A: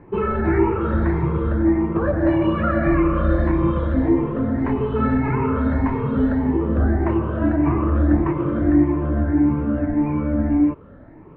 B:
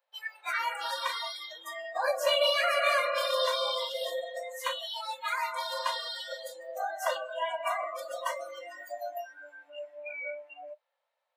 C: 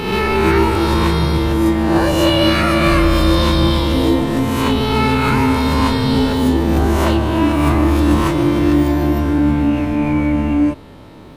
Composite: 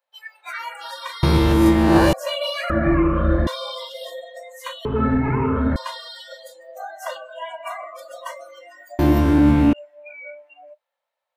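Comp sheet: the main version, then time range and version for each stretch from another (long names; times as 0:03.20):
B
0:01.23–0:02.13: punch in from C
0:02.70–0:03.47: punch in from A
0:04.85–0:05.76: punch in from A
0:08.99–0:09.73: punch in from C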